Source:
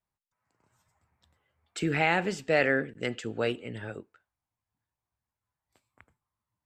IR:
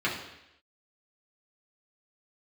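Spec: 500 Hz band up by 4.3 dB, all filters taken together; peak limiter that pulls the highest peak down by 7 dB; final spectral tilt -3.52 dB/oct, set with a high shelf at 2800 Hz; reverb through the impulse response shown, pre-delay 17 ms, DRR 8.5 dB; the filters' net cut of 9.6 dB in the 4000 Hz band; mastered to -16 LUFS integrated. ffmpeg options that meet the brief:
-filter_complex "[0:a]equalizer=f=500:t=o:g=5.5,highshelf=f=2.8k:g=-7.5,equalizer=f=4k:t=o:g=-9,alimiter=limit=-18.5dB:level=0:latency=1,asplit=2[a][b];[1:a]atrim=start_sample=2205,adelay=17[c];[b][c]afir=irnorm=-1:irlink=0,volume=-19.5dB[d];[a][d]amix=inputs=2:normalize=0,volume=14.5dB"

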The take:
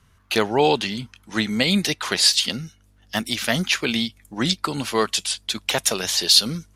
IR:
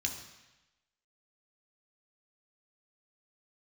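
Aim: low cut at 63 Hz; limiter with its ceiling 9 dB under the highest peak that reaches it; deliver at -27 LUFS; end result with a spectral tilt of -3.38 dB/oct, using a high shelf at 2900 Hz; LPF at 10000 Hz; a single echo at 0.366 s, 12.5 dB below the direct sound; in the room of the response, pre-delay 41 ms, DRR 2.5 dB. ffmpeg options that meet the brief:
-filter_complex "[0:a]highpass=63,lowpass=10k,highshelf=f=2.9k:g=-7,alimiter=limit=-14dB:level=0:latency=1,aecho=1:1:366:0.237,asplit=2[a][b];[1:a]atrim=start_sample=2205,adelay=41[c];[b][c]afir=irnorm=-1:irlink=0,volume=-5dB[d];[a][d]amix=inputs=2:normalize=0,volume=-3dB"

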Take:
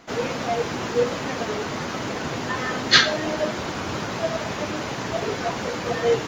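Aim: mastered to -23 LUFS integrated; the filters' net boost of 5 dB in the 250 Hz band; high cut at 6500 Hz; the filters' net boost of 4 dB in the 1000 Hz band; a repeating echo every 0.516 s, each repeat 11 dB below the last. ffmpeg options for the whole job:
-af "lowpass=6.5k,equalizer=f=250:t=o:g=6,equalizer=f=1k:t=o:g=5,aecho=1:1:516|1032|1548:0.282|0.0789|0.0221,volume=-1dB"

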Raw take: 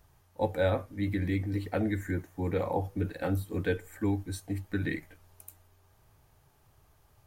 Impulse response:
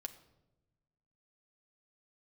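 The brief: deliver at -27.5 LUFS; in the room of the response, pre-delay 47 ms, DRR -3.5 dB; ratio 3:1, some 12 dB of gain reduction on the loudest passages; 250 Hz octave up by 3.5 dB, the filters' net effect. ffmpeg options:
-filter_complex "[0:a]equalizer=f=250:t=o:g=4.5,acompressor=threshold=-39dB:ratio=3,asplit=2[a][b];[1:a]atrim=start_sample=2205,adelay=47[c];[b][c]afir=irnorm=-1:irlink=0,volume=7dB[d];[a][d]amix=inputs=2:normalize=0,volume=9dB"

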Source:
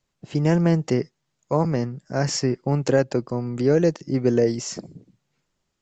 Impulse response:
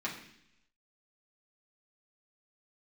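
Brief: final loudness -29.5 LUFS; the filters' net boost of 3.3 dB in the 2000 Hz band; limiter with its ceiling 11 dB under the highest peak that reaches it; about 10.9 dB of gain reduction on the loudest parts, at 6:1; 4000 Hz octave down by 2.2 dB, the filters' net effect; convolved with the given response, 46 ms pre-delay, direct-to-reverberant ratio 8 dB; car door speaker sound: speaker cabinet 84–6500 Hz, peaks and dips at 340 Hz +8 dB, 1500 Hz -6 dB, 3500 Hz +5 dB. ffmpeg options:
-filter_complex "[0:a]equalizer=f=2k:t=o:g=8.5,equalizer=f=4k:t=o:g=-5.5,acompressor=threshold=-25dB:ratio=6,alimiter=level_in=0.5dB:limit=-24dB:level=0:latency=1,volume=-0.5dB,asplit=2[a][b];[1:a]atrim=start_sample=2205,adelay=46[c];[b][c]afir=irnorm=-1:irlink=0,volume=-12.5dB[d];[a][d]amix=inputs=2:normalize=0,highpass=84,equalizer=f=340:t=q:w=4:g=8,equalizer=f=1.5k:t=q:w=4:g=-6,equalizer=f=3.5k:t=q:w=4:g=5,lowpass=f=6.5k:w=0.5412,lowpass=f=6.5k:w=1.3066,volume=3dB"

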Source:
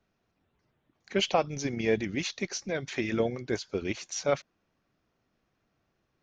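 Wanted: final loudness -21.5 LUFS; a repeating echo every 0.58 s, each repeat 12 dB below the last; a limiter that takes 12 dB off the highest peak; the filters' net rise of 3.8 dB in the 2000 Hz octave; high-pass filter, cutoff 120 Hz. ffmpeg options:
-af "highpass=120,equalizer=f=2k:t=o:g=4.5,alimiter=limit=-22.5dB:level=0:latency=1,aecho=1:1:580|1160|1740:0.251|0.0628|0.0157,volume=13dB"

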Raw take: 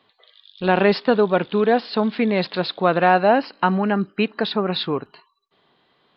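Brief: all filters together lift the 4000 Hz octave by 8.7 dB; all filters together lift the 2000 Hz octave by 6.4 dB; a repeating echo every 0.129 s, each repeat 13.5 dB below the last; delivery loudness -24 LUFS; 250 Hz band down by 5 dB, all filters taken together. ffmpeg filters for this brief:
-af "equalizer=f=250:t=o:g=-7,equalizer=f=2k:t=o:g=7,equalizer=f=4k:t=o:g=8,aecho=1:1:129|258:0.211|0.0444,volume=-5.5dB"

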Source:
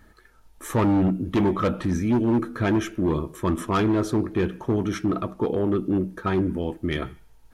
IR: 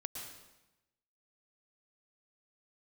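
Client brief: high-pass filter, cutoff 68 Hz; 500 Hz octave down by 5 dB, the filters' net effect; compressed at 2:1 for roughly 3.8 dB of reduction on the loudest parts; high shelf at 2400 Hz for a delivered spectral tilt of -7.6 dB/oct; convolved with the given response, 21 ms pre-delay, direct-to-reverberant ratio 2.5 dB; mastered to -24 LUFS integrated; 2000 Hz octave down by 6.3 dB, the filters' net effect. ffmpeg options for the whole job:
-filter_complex "[0:a]highpass=68,equalizer=f=500:t=o:g=-7,equalizer=f=2k:t=o:g=-4.5,highshelf=f=2.4k:g=-7,acompressor=threshold=-26dB:ratio=2,asplit=2[a][b];[1:a]atrim=start_sample=2205,adelay=21[c];[b][c]afir=irnorm=-1:irlink=0,volume=-1.5dB[d];[a][d]amix=inputs=2:normalize=0,volume=3.5dB"

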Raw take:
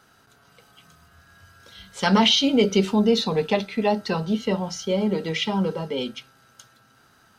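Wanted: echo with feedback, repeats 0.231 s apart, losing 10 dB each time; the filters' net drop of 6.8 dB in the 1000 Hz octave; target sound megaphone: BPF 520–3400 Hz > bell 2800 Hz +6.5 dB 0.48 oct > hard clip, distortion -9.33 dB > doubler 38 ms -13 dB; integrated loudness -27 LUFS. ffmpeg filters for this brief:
-filter_complex "[0:a]highpass=520,lowpass=3.4k,equalizer=f=1k:t=o:g=-8,equalizer=f=2.8k:t=o:w=0.48:g=6.5,aecho=1:1:231|462|693|924:0.316|0.101|0.0324|0.0104,asoftclip=type=hard:threshold=-20.5dB,asplit=2[a][b];[b]adelay=38,volume=-13dB[c];[a][c]amix=inputs=2:normalize=0,volume=0.5dB"

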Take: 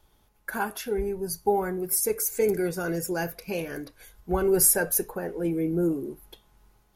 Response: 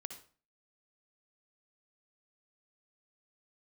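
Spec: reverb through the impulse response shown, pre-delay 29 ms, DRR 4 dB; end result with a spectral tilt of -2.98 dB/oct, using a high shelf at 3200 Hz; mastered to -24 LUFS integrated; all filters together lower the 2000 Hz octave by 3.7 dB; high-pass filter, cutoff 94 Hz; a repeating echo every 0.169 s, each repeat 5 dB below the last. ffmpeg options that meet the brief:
-filter_complex "[0:a]highpass=94,equalizer=f=2k:t=o:g=-6.5,highshelf=f=3.2k:g=3.5,aecho=1:1:169|338|507|676|845|1014|1183:0.562|0.315|0.176|0.0988|0.0553|0.031|0.0173,asplit=2[a][b];[1:a]atrim=start_sample=2205,adelay=29[c];[b][c]afir=irnorm=-1:irlink=0,volume=-1dB[d];[a][d]amix=inputs=2:normalize=0,volume=-2dB"

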